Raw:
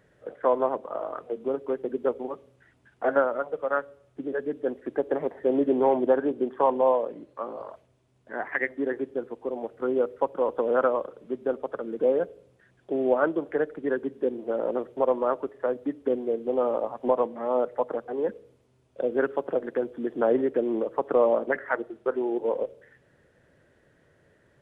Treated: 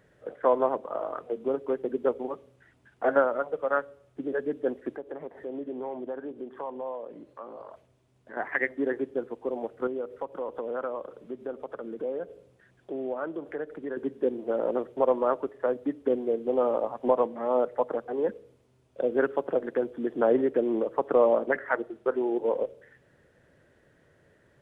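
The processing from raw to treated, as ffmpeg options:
-filter_complex "[0:a]asettb=1/sr,asplit=3[a][b][c];[a]atrim=end=4.944[d];[b]atrim=start=4.94:end=8.37,asetpts=PTS-STARTPTS,afade=t=in:d=0.004:c=qsin,afade=t=out:st=3.426:d=0.004:c=qsin,acompressor=threshold=-43dB:ratio=2:attack=3.2:release=140:knee=1:detection=peak[e];[c]atrim=start=8.366[f];[d][e]acrossfade=d=0.004:c1=hsin:c2=qsin[g];[g][f]acrossfade=d=0.004:c1=qsin:c2=hsin,asettb=1/sr,asplit=3[h][i][j];[h]atrim=end=9.874[k];[i]atrim=start=9.87:end=13.97,asetpts=PTS-STARTPTS,afade=t=in:d=0.004:c=qsin,afade=t=out:st=4.096:d=0.004:c=qsin,acompressor=threshold=-36dB:ratio=2:attack=3.2:release=140:knee=1:detection=peak[l];[j]atrim=start=13.966[m];[k][l]acrossfade=d=0.004:c1=hsin:c2=qsin[n];[n][m]acrossfade=d=0.004:c1=qsin:c2=hsin"

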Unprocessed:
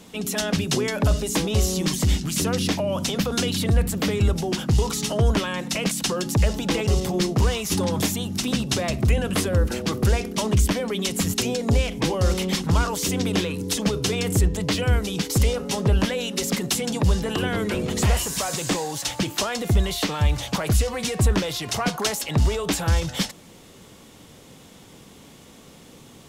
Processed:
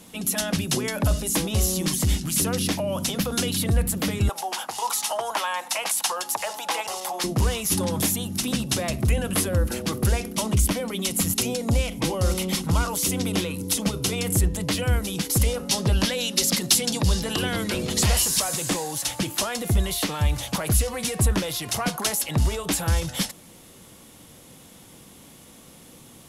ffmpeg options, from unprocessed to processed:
-filter_complex "[0:a]asettb=1/sr,asplit=3[a][b][c];[a]atrim=end=4.294[d];[b]atrim=start=4.29:end=7.24,asetpts=PTS-STARTPTS,afade=t=in:d=0.004:c=qsin,afade=t=out:st=2.946:d=0.004:c=qsin,highpass=f=840:t=q:w=3.2[e];[c]atrim=start=7.236[f];[d][e]acrossfade=d=0.004:c1=hsin:c2=qsin[g];[g][f]acrossfade=d=0.004:c1=qsin:c2=hsin,asettb=1/sr,asplit=3[h][i][j];[h]atrim=end=10.344[k];[i]atrim=start=10.34:end=14.26,asetpts=PTS-STARTPTS,afade=t=in:d=0.004:c=qsin,afade=t=out:st=3.916:d=0.004:c=qsin,bandreject=f=1.7k:w=11[l];[j]atrim=start=14.256[m];[k][l]acrossfade=d=0.004:c1=hsin:c2=qsin[n];[n][m]acrossfade=d=0.004:c1=qsin:c2=hsin,asettb=1/sr,asplit=3[o][p][q];[o]atrim=end=15.694[r];[p]atrim=start=15.69:end=18.4,asetpts=PTS-STARTPTS,afade=t=in:d=0.004:c=qsin,afade=t=out:st=2.706:d=0.004:c=qsin,equalizer=f=4.6k:w=1.1:g=9[s];[q]atrim=start=18.396[t];[r][s]acrossfade=d=0.004:c1=hsin:c2=qsin[u];[u][t]acrossfade=d=0.004:c1=qsin:c2=hsin,equalizer=f=11k:w=1.6:g=11.5,bandreject=f=420:w=12,volume=-2dB"

